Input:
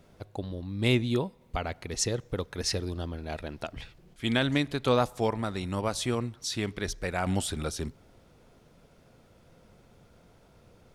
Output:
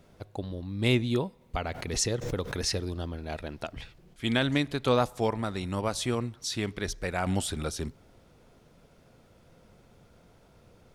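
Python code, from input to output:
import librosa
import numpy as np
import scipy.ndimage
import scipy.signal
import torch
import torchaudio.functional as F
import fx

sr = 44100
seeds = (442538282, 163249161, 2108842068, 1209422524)

y = fx.pre_swell(x, sr, db_per_s=61.0, at=(1.65, 2.68))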